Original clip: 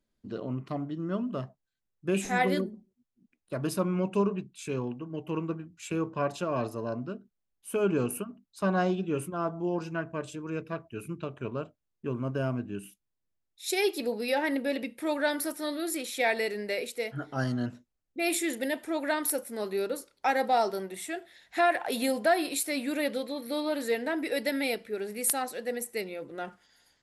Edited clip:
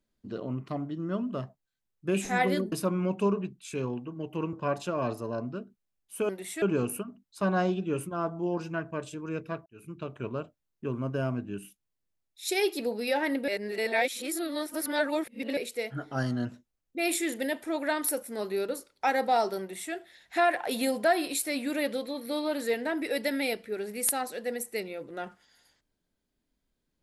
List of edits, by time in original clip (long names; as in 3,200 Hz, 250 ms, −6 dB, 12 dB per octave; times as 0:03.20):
0:02.72–0:03.66: remove
0:05.47–0:06.07: remove
0:10.87–0:11.31: fade in
0:14.69–0:16.78: reverse
0:20.81–0:21.14: duplicate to 0:07.83